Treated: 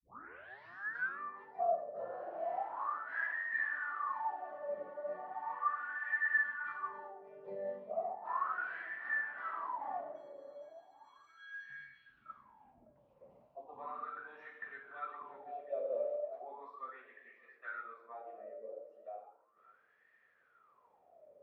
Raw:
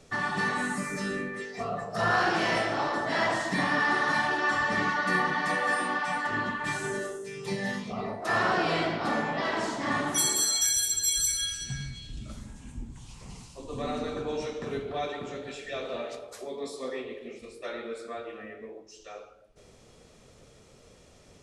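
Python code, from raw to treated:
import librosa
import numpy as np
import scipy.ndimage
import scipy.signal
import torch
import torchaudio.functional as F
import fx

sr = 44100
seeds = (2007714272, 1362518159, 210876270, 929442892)

p1 = fx.tape_start_head(x, sr, length_s=1.2)
p2 = fx.rider(p1, sr, range_db=5, speed_s=0.5)
p3 = p2 + fx.echo_filtered(p2, sr, ms=566, feedback_pct=47, hz=1600.0, wet_db=-13.5, dry=0)
p4 = fx.wah_lfo(p3, sr, hz=0.36, low_hz=550.0, high_hz=1800.0, q=18.0)
p5 = scipy.signal.sosfilt(scipy.signal.butter(2, 2400.0, 'lowpass', fs=sr, output='sos'), p4)
y = p5 * librosa.db_to_amplitude(4.0)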